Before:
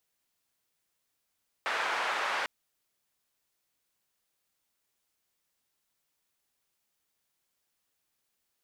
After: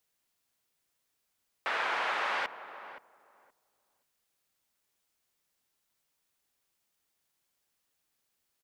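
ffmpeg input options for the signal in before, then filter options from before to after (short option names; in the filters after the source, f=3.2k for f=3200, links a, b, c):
-f lavfi -i "anoisesrc=c=white:d=0.8:r=44100:seed=1,highpass=f=840,lowpass=f=1500,volume=-12.3dB"
-filter_complex "[0:a]acrossover=split=4200[a][b];[b]acompressor=threshold=-55dB:ratio=4:attack=1:release=60[c];[a][c]amix=inputs=2:normalize=0,asplit=2[d][e];[e]adelay=522,lowpass=f=1.1k:p=1,volume=-11dB,asplit=2[f][g];[g]adelay=522,lowpass=f=1.1k:p=1,volume=0.19,asplit=2[h][i];[i]adelay=522,lowpass=f=1.1k:p=1,volume=0.19[j];[d][f][h][j]amix=inputs=4:normalize=0"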